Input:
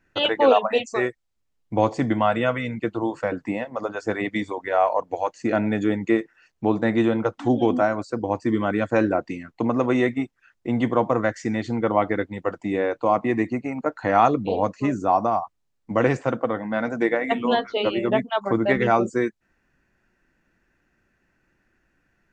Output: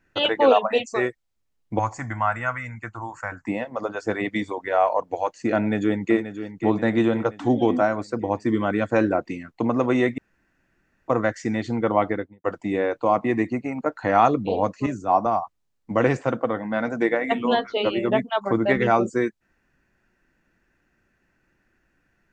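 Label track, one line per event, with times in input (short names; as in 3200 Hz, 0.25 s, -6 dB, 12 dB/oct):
1.790000	3.470000	EQ curve 110 Hz 0 dB, 160 Hz -12 dB, 260 Hz -13 dB, 450 Hz -19 dB, 820 Hz -1 dB, 1500 Hz +3 dB, 2200 Hz -2 dB, 3500 Hz -17 dB, 7200 Hz +7 dB, 11000 Hz -17 dB
5.570000	6.170000	echo throw 0.53 s, feedback 55%, level -10.5 dB
10.180000	11.080000	room tone
12.040000	12.440000	studio fade out
14.860000	15.260000	three-band expander depth 100%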